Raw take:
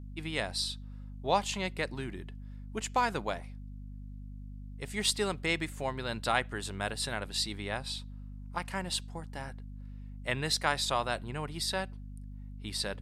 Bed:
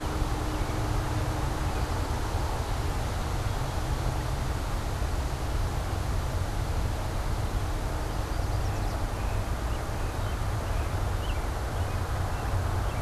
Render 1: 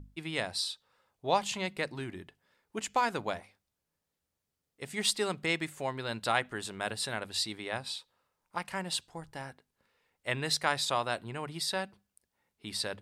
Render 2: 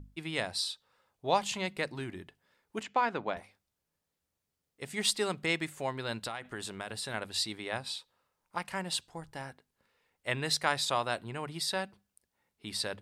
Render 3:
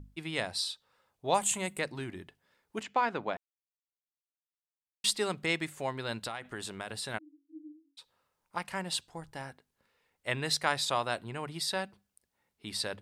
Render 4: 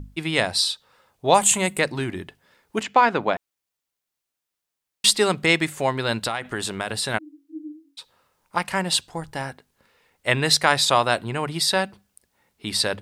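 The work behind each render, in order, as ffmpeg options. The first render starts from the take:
-af "bandreject=f=50:t=h:w=6,bandreject=f=100:t=h:w=6,bandreject=f=150:t=h:w=6,bandreject=f=200:t=h:w=6,bandreject=f=250:t=h:w=6"
-filter_complex "[0:a]asettb=1/sr,asplit=3[s0][s1][s2];[s0]atrim=end=2.834[s3];[s1]atrim=start=2.83:end=3.37,asetpts=PTS-STARTPTS,afade=t=in:d=0.004:c=qsin,afade=t=out:st=0.536:d=0.004:c=qsin,highpass=150,lowpass=3100[s4];[s2]atrim=start=3.366[s5];[s3][s4]acrossfade=d=0.004:c1=hsin:c2=qsin[s6];[s6][s5]acrossfade=d=0.004:c1=qsin:c2=hsin,asettb=1/sr,asplit=3[s7][s8][s9];[s7]atrim=end=6.164[s10];[s8]atrim=start=6.16:end=7.14,asetpts=PTS-STARTPTS,afade=t=in:d=0.004:c=qsin,afade=t=out:st=0.976:d=0.004:c=qsin,acompressor=threshold=0.0224:ratio=16:attack=3.2:release=140:knee=1:detection=peak[s11];[s9]atrim=start=7.136[s12];[s10][s11]acrossfade=d=0.004:c1=hsin:c2=qsin[s13];[s13][s12]acrossfade=d=0.004:c1=qsin:c2=hsin"
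-filter_complex "[0:a]asettb=1/sr,asplit=3[s0][s1][s2];[s0]atrim=end=1.344[s3];[s1]atrim=start=1.34:end=1.79,asetpts=PTS-STARTPTS,afade=t=in:d=0.004:c=qsin,afade=t=out:st=0.446:d=0.004:c=qsin,highshelf=f=6400:t=q:w=3:g=9.5[s4];[s2]atrim=start=1.786[s5];[s3][s4]acrossfade=d=0.004:c1=hsin:c2=qsin[s6];[s6][s5]acrossfade=d=0.004:c1=qsin:c2=hsin,asplit=3[s7][s8][s9];[s7]afade=t=out:st=7.17:d=0.02[s10];[s8]asuperpass=centerf=300:order=20:qfactor=6.5,afade=t=in:st=7.17:d=0.02,afade=t=out:st=7.97:d=0.02[s11];[s9]afade=t=in:st=7.97:d=0.02[s12];[s10][s11][s12]amix=inputs=3:normalize=0,asplit=3[s13][s14][s15];[s13]atrim=end=3.37,asetpts=PTS-STARTPTS,afade=t=out:st=3.366:d=0.004:c=hsin[s16];[s14]atrim=start=3.37:end=5.04,asetpts=PTS-STARTPTS,volume=0[s17];[s15]atrim=start=5.04,asetpts=PTS-STARTPTS,afade=t=in:d=0.004:c=hsin[s18];[s16][s17][s18]concat=n=3:v=0:a=1"
-af "volume=3.98,alimiter=limit=0.708:level=0:latency=1"

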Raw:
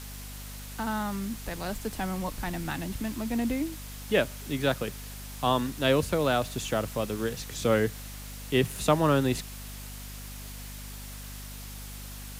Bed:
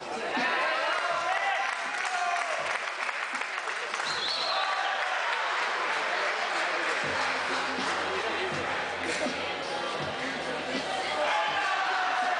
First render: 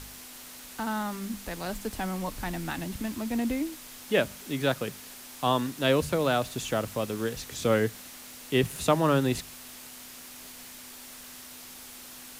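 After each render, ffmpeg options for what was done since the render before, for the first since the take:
-af "bandreject=f=50:t=h:w=4,bandreject=f=100:t=h:w=4,bandreject=f=150:t=h:w=4,bandreject=f=200:t=h:w=4"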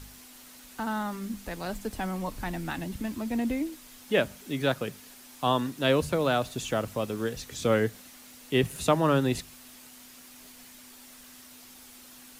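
-af "afftdn=nr=6:nf=-46"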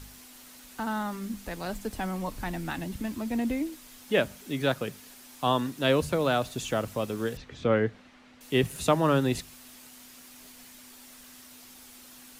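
-filter_complex "[0:a]asettb=1/sr,asplit=3[s0][s1][s2];[s0]atrim=end=7.374[s3];[s1]atrim=start=7.37:end=8.41,asetpts=PTS-STARTPTS,afade=t=in:d=0.004:c=qsin,afade=t=out:st=1.036:d=0.004:c=qsin,lowpass=2600[s4];[s2]atrim=start=8.406[s5];[s3][s4]acrossfade=d=0.004:c1=hsin:c2=qsin[s6];[s6][s5]acrossfade=d=0.004:c1=qsin:c2=hsin"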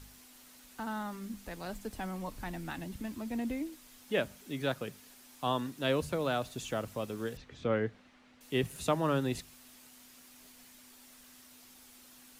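-af "volume=0.473"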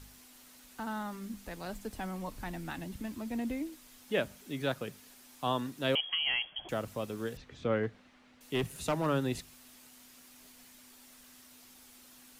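-filter_complex "[0:a]asettb=1/sr,asplit=3[s0][s1][s2];[s0]atrim=end=5.954[s3];[s1]atrim=start=5.95:end=6.69,asetpts=PTS-STARTPTS,afade=t=in:d=0.004:c=qsin,afade=t=out:st=0.736:d=0.004:c=qsin,lowpass=f=2900:t=q:w=0.5098,lowpass=f=2900:t=q:w=0.6013,lowpass=f=2900:t=q:w=0.9,lowpass=f=2900:t=q:w=2.563,afreqshift=-3400[s4];[s2]atrim=start=6.686[s5];[s3][s4]acrossfade=d=0.004:c1=hsin:c2=qsin[s6];[s6][s5]acrossfade=d=0.004:c1=qsin:c2=hsin,asettb=1/sr,asplit=3[s7][s8][s9];[s7]atrim=end=7.834[s10];[s8]atrim=start=7.83:end=9.06,asetpts=PTS-STARTPTS,afade=t=in:d=0.004:c=qsin,afade=t=out:st=1.226:d=0.004:c=qsin,asoftclip=type=hard:threshold=0.0562[s11];[s9]atrim=start=9.056[s12];[s10][s11]acrossfade=d=0.004:c1=hsin:c2=qsin[s13];[s13][s12]acrossfade=d=0.004:c1=qsin:c2=hsin"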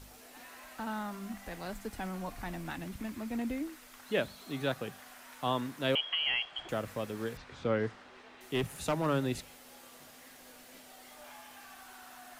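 -filter_complex "[1:a]volume=0.0562[s0];[0:a][s0]amix=inputs=2:normalize=0"

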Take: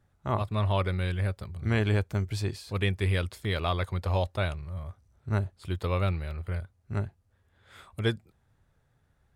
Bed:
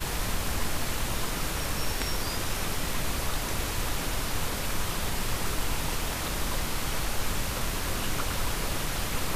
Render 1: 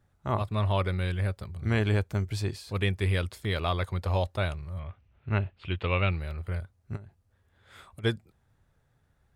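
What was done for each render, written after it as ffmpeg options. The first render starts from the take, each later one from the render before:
-filter_complex "[0:a]asettb=1/sr,asplit=3[s0][s1][s2];[s0]atrim=end=4.794[s3];[s1]atrim=start=4.79:end=6.11,asetpts=PTS-STARTPTS,afade=t=in:d=0.004:c=qsin,afade=t=out:st=1.316:d=0.004:c=qsin,lowpass=f=2700:t=q:w=4.2[s4];[s2]atrim=start=6.106[s5];[s3][s4]acrossfade=d=0.004:c1=hsin:c2=qsin[s6];[s6][s5]acrossfade=d=0.004:c1=qsin:c2=hsin,asplit=3[s7][s8][s9];[s7]afade=t=out:st=6.95:d=0.02[s10];[s8]acompressor=threshold=0.01:ratio=20:attack=3.2:release=140:knee=1:detection=peak,afade=t=in:st=6.95:d=0.02,afade=t=out:st=8.03:d=0.02[s11];[s9]afade=t=in:st=8.03:d=0.02[s12];[s10][s11][s12]amix=inputs=3:normalize=0"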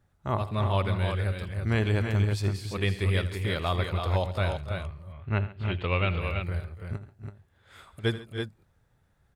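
-af "aecho=1:1:80|136|284|302|331:0.178|0.112|0.119|0.2|0.501"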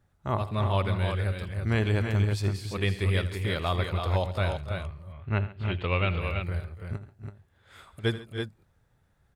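-af anull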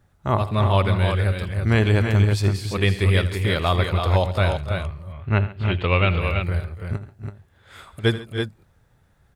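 -af "volume=2.37"

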